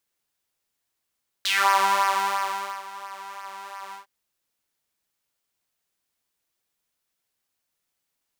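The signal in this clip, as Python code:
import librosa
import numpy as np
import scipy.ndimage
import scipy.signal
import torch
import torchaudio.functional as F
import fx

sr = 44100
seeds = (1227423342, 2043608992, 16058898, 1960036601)

y = fx.sub_patch_pwm(sr, seeds[0], note=55, wave2='saw', interval_st=0, detune_cents=22, level2_db=-9.0, sub_db=-14, noise_db=-27.0, kind='highpass', cutoff_hz=990.0, q=3.7, env_oct=2.0, env_decay_s=0.2, env_sustain_pct=0, attack_ms=5.3, decay_s=1.37, sustain_db=-20.5, release_s=0.12, note_s=2.49, lfo_hz=2.9, width_pct=20, width_swing_pct=15)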